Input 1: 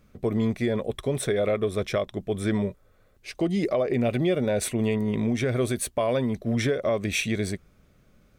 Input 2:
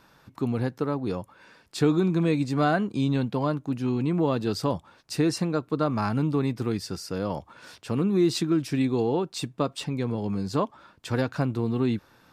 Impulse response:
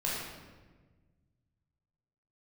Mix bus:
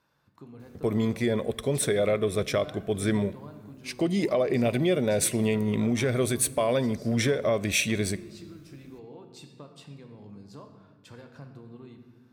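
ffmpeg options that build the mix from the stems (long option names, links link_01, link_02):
-filter_complex "[0:a]highshelf=frequency=4500:gain=7,adelay=600,volume=-1dB,asplit=2[link_01][link_02];[link_02]volume=-23dB[link_03];[1:a]acompressor=threshold=-29dB:ratio=4,volume=-17dB,asplit=2[link_04][link_05];[link_05]volume=-8.5dB[link_06];[2:a]atrim=start_sample=2205[link_07];[link_03][link_06]amix=inputs=2:normalize=0[link_08];[link_08][link_07]afir=irnorm=-1:irlink=0[link_09];[link_01][link_04][link_09]amix=inputs=3:normalize=0,highpass=50"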